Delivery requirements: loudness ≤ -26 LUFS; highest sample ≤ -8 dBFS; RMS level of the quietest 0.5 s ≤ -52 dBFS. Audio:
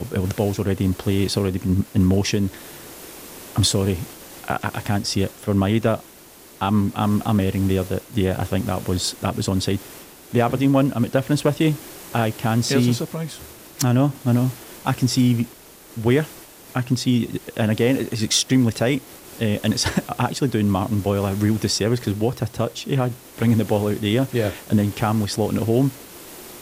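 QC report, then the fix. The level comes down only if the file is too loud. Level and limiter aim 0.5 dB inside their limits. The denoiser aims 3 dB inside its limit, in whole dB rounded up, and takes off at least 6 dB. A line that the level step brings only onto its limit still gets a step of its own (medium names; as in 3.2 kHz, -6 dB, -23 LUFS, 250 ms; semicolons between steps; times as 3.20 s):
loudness -21.5 LUFS: fail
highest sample -4.5 dBFS: fail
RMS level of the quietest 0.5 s -45 dBFS: fail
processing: noise reduction 6 dB, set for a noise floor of -45 dBFS; trim -5 dB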